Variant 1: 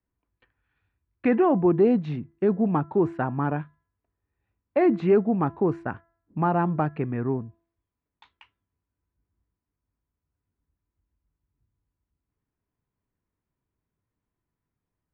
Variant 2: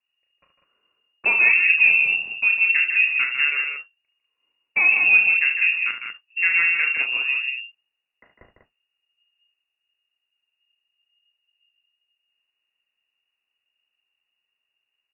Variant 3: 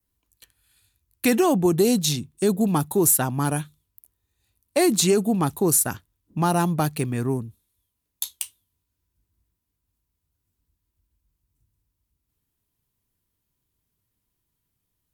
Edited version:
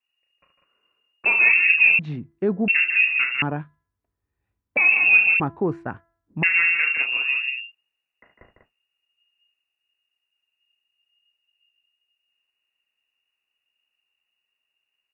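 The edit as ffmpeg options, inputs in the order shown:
-filter_complex "[0:a]asplit=3[a][b][c];[1:a]asplit=4[d][e][f][g];[d]atrim=end=1.992[h];[a]atrim=start=1.988:end=2.682[i];[e]atrim=start=2.678:end=3.422[j];[b]atrim=start=3.418:end=4.772[k];[f]atrim=start=4.768:end=5.402[l];[c]atrim=start=5.398:end=6.432[m];[g]atrim=start=6.428[n];[h][i]acrossfade=d=0.004:c1=hsin:c2=hsin[o];[o][j]acrossfade=d=0.004:c1=hsin:c2=hsin[p];[p][k]acrossfade=d=0.004:c1=hsin:c2=hsin[q];[q][l]acrossfade=d=0.004:c1=hsin:c2=hsin[r];[r][m]acrossfade=d=0.004:c1=hsin:c2=hsin[s];[s][n]acrossfade=d=0.004:c1=hsin:c2=hsin"

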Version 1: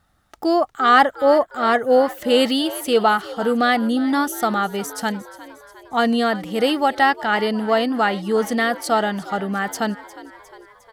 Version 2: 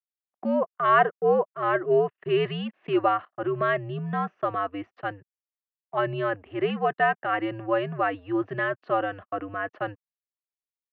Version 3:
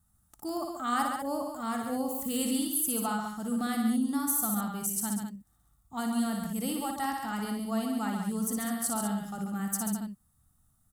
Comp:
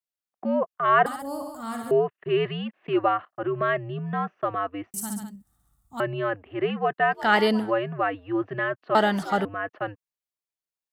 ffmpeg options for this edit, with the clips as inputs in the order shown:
-filter_complex "[2:a]asplit=2[a][b];[0:a]asplit=2[c][d];[1:a]asplit=5[e][f][g][h][i];[e]atrim=end=1.062[j];[a]atrim=start=1.058:end=1.912[k];[f]atrim=start=1.908:end=4.942[l];[b]atrim=start=4.938:end=6.002[m];[g]atrim=start=5.998:end=7.27[n];[c]atrim=start=7.11:end=7.72[o];[h]atrim=start=7.56:end=8.952[p];[d]atrim=start=8.948:end=9.452[q];[i]atrim=start=9.448[r];[j][k]acrossfade=d=0.004:c1=hsin:c2=hsin[s];[s][l]acrossfade=d=0.004:c1=hsin:c2=hsin[t];[t][m]acrossfade=d=0.004:c1=hsin:c2=hsin[u];[u][n]acrossfade=d=0.004:c1=hsin:c2=hsin[v];[v][o]acrossfade=d=0.16:c1=tri:c2=tri[w];[w][p]acrossfade=d=0.16:c1=tri:c2=tri[x];[x][q]acrossfade=d=0.004:c1=hsin:c2=hsin[y];[y][r]acrossfade=d=0.004:c1=hsin:c2=hsin"

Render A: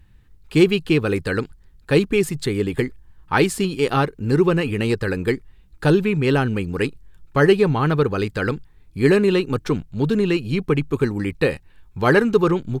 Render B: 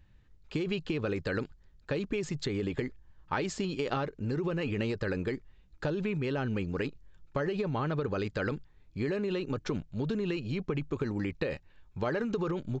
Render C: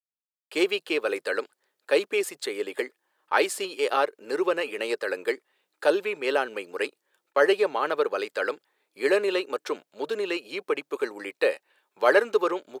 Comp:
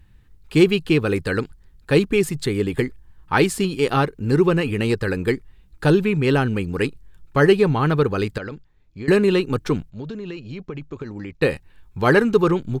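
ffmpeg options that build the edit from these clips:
-filter_complex "[1:a]asplit=2[a][b];[0:a]asplit=3[c][d][e];[c]atrim=end=8.382[f];[a]atrim=start=8.378:end=9.082[g];[d]atrim=start=9.078:end=9.902[h];[b]atrim=start=9.898:end=11.422[i];[e]atrim=start=11.418[j];[f][g]acrossfade=d=0.004:c1=hsin:c2=hsin[k];[k][h]acrossfade=d=0.004:c1=hsin:c2=hsin[l];[l][i]acrossfade=d=0.004:c1=hsin:c2=hsin[m];[m][j]acrossfade=d=0.004:c1=hsin:c2=hsin"

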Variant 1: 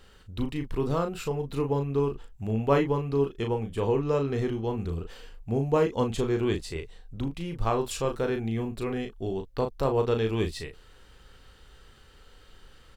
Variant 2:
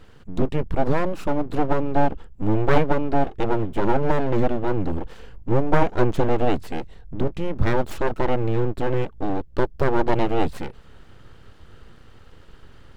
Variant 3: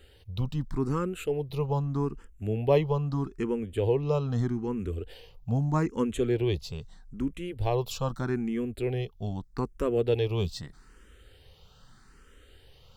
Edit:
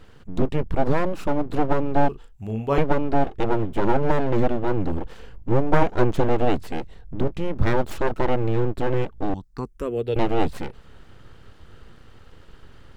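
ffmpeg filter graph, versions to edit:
-filter_complex "[1:a]asplit=3[a][b][c];[a]atrim=end=2.092[d];[0:a]atrim=start=2.088:end=2.782[e];[b]atrim=start=2.778:end=9.342[f];[2:a]atrim=start=9.338:end=10.162[g];[c]atrim=start=10.158[h];[d][e]acrossfade=d=0.004:c1=hsin:c2=hsin[i];[i][f]acrossfade=d=0.004:c1=hsin:c2=hsin[j];[j][g]acrossfade=d=0.004:c1=hsin:c2=hsin[k];[k][h]acrossfade=d=0.004:c1=hsin:c2=hsin"

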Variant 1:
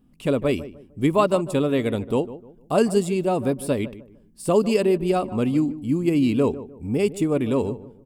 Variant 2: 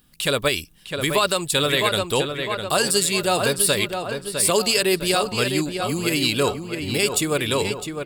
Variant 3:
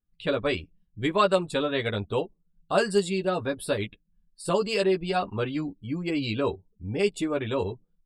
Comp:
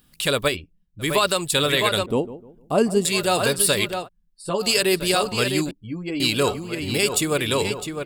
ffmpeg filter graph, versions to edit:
-filter_complex "[2:a]asplit=3[a][b][c];[1:a]asplit=5[d][e][f][g][h];[d]atrim=end=0.57[i];[a]atrim=start=0.47:end=1.09[j];[e]atrim=start=0.99:end=2.062[k];[0:a]atrim=start=2.058:end=3.052[l];[f]atrim=start=3.048:end=4.09[m];[b]atrim=start=3.99:end=4.68[n];[g]atrim=start=4.58:end=5.712[o];[c]atrim=start=5.708:end=6.202[p];[h]atrim=start=6.198[q];[i][j]acrossfade=d=0.1:c1=tri:c2=tri[r];[r][k]acrossfade=d=0.1:c1=tri:c2=tri[s];[s][l]acrossfade=d=0.004:c1=hsin:c2=hsin[t];[t][m]acrossfade=d=0.004:c1=hsin:c2=hsin[u];[u][n]acrossfade=d=0.1:c1=tri:c2=tri[v];[v][o]acrossfade=d=0.1:c1=tri:c2=tri[w];[w][p]acrossfade=d=0.004:c1=hsin:c2=hsin[x];[x][q]acrossfade=d=0.004:c1=hsin:c2=hsin"

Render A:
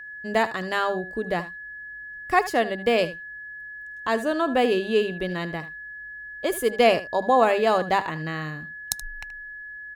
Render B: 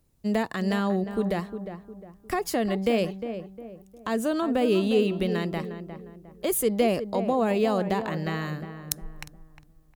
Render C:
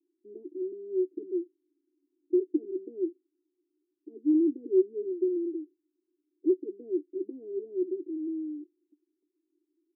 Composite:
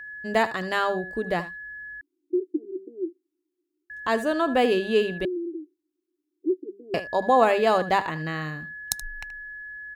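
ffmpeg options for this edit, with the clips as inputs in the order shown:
-filter_complex "[2:a]asplit=2[a][b];[0:a]asplit=3[c][d][e];[c]atrim=end=2.012[f];[a]atrim=start=2.008:end=3.902[g];[d]atrim=start=3.898:end=5.252[h];[b]atrim=start=5.248:end=6.942[i];[e]atrim=start=6.938[j];[f][g]acrossfade=d=0.004:c1=hsin:c2=hsin[k];[k][h]acrossfade=d=0.004:c1=hsin:c2=hsin[l];[l][i]acrossfade=d=0.004:c1=hsin:c2=hsin[m];[m][j]acrossfade=d=0.004:c1=hsin:c2=hsin"

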